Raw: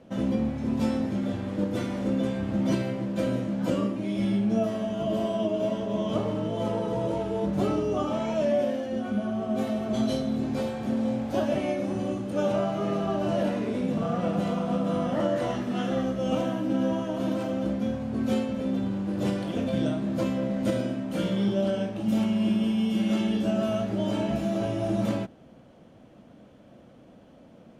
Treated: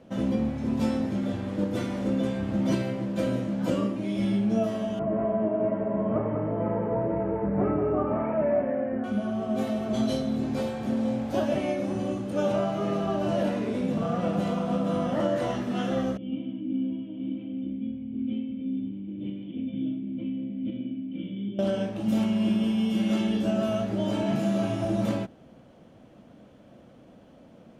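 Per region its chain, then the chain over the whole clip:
4.99–9.04 steep low-pass 2200 Hz 48 dB/oct + echo 0.19 s -6 dB
16.17–21.59 vocal tract filter i + high shelf 3500 Hz +8 dB
24.23–24.85 HPF 110 Hz + doubler 35 ms -3 dB
whole clip: dry

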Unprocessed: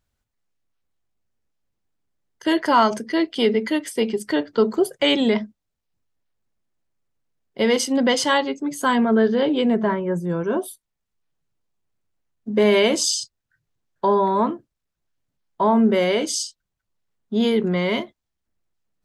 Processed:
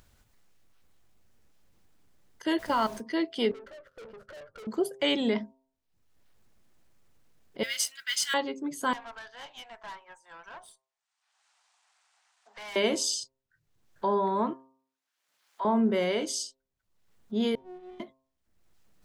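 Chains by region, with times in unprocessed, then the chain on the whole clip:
2.58–2.99 level quantiser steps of 17 dB + added noise pink -42 dBFS
3.51–4.67 switching dead time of 0.078 ms + EQ curve 150 Hz 0 dB, 280 Hz -27 dB, 560 Hz +10 dB, 830 Hz -21 dB, 1400 Hz +7 dB, 2000 Hz -17 dB, 4100 Hz -18 dB, 8400 Hz -27 dB + tube stage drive 37 dB, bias 0.5
7.63–8.34 Chebyshev high-pass 1400 Hz, order 5 + high shelf 6200 Hz +10.5 dB + modulation noise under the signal 21 dB
8.93–12.76 Chebyshev band-pass 750–8900 Hz, order 4 + tube stage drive 30 dB, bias 0.7
14.53–15.65 HPF 960 Hz + high shelf 9600 Hz -4.5 dB + flutter echo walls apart 10.9 m, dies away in 0.21 s
17.55–18 air absorption 280 m + metallic resonator 360 Hz, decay 0.81 s, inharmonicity 0.03 + running maximum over 33 samples
whole clip: upward compressor, threshold -36 dBFS; de-hum 132.6 Hz, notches 9; gain -8 dB

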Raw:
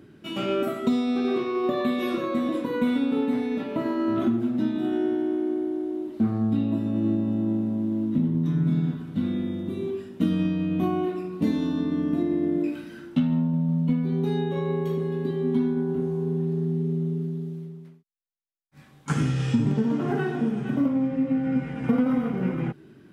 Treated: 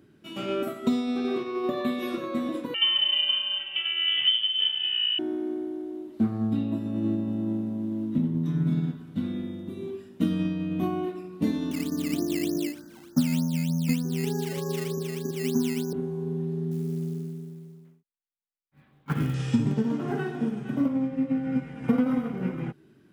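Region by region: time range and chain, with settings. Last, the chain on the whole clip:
2.74–5.19 inverted band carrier 3300 Hz + narrowing echo 0.165 s, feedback 65%, band-pass 370 Hz, level -6 dB
11.71–15.93 steep low-pass 1800 Hz 96 dB/oct + decimation with a swept rate 13× 3.3 Hz
16.71–19.34 LPF 3700 Hz 24 dB/oct + high shelf 2500 Hz -4.5 dB + short-mantissa float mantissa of 4-bit
whole clip: high shelf 5100 Hz +5 dB; upward expander 1.5:1, over -32 dBFS

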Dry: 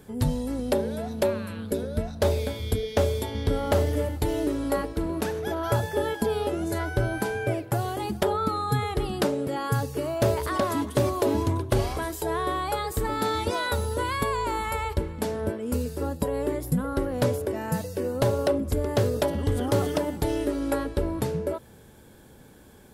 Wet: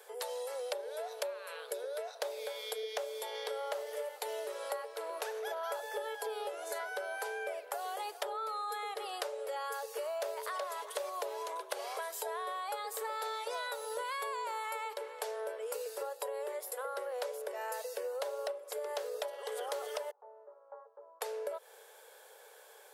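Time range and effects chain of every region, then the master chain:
20.11–21.21 steep low-pass 1100 Hz + differentiator
whole clip: steep high-pass 440 Hz 72 dB/oct; compressor, threshold -36 dBFS

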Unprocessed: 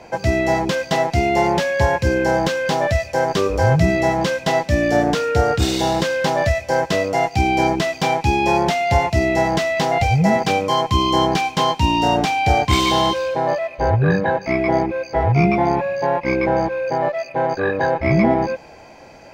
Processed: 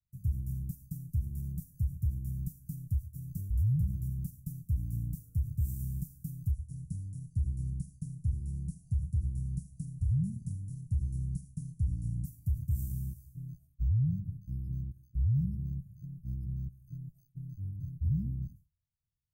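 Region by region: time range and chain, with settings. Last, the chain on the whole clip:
6.51–12.25 brick-wall FIR low-pass 11000 Hz + echo 75 ms -15.5 dB
whole clip: expander -24 dBFS; inverse Chebyshev band-stop 490–3600 Hz, stop band 70 dB; limiter -20.5 dBFS; gain -2.5 dB

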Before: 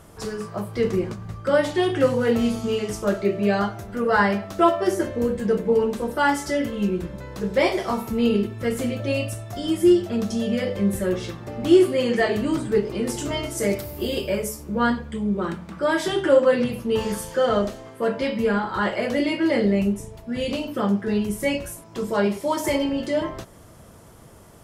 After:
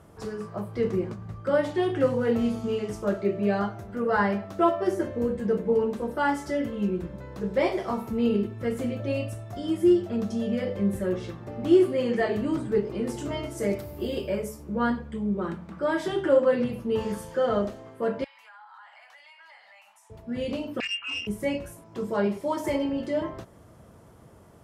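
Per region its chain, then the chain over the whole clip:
18.24–20.1 elliptic high-pass 810 Hz, stop band 50 dB + compressor 5:1, threshold -43 dBFS
20.8–21.27 inverted band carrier 3000 Hz + core saturation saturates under 2600 Hz
whole clip: HPF 49 Hz; high shelf 2300 Hz -9 dB; gain -3.5 dB

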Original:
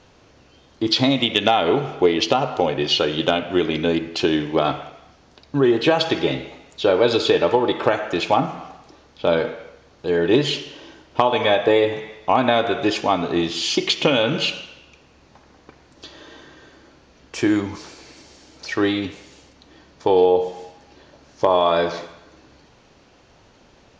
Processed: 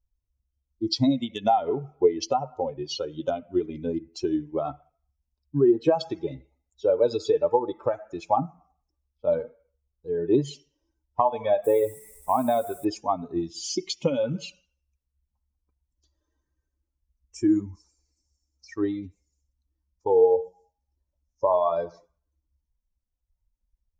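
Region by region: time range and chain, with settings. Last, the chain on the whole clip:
11.64–12.85 upward compressor, threshold -24 dBFS + requantised 6-bit, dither none
whole clip: per-bin expansion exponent 2; band shelf 2300 Hz -15 dB

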